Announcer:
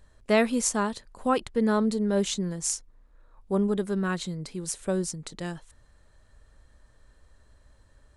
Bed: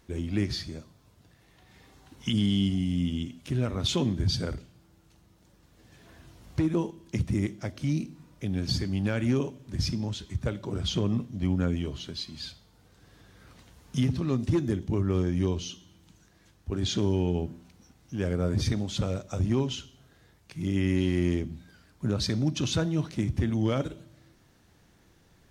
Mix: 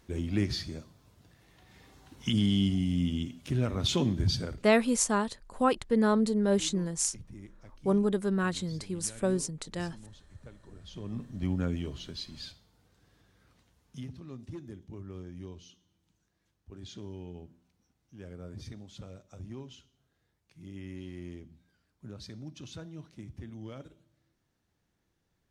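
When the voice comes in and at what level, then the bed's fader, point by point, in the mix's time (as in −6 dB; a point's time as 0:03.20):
4.35 s, −1.0 dB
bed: 0:04.30 −1 dB
0:05.14 −20 dB
0:10.86 −20 dB
0:11.30 −4 dB
0:12.39 −4 dB
0:14.20 −17 dB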